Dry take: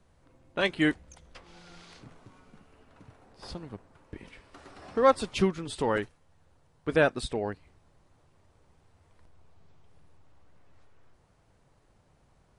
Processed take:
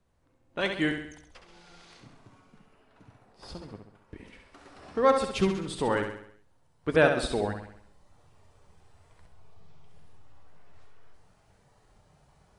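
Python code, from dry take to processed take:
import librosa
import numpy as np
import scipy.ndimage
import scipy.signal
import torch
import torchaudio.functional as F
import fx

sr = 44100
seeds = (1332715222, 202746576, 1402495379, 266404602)

p1 = fx.rider(x, sr, range_db=4, speed_s=2.0)
p2 = fx.noise_reduce_blind(p1, sr, reduce_db=6)
y = p2 + fx.echo_feedback(p2, sr, ms=67, feedback_pct=50, wet_db=-6.5, dry=0)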